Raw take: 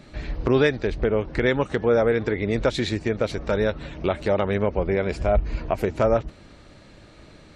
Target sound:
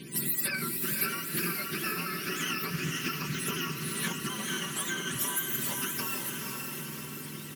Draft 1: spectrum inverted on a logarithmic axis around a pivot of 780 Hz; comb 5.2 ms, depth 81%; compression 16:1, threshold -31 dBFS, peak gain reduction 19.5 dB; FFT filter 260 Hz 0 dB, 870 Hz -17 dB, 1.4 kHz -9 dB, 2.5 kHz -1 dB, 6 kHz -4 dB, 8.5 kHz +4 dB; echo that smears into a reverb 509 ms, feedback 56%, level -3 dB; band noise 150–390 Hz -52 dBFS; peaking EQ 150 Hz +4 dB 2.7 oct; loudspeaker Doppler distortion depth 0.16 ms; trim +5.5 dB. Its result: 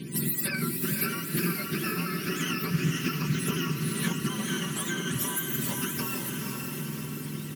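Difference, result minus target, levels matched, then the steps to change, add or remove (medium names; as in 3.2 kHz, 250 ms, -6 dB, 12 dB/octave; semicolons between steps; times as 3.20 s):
125 Hz band +6.5 dB
change: peaking EQ 150 Hz -4.5 dB 2.7 oct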